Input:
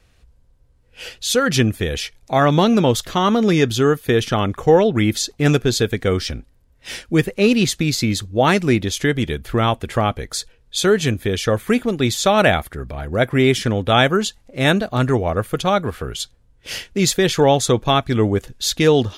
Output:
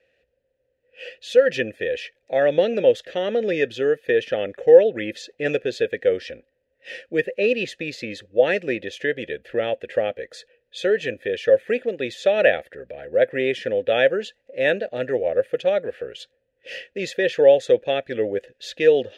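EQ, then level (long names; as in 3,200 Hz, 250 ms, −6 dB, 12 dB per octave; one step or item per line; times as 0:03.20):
formant filter e
+7.0 dB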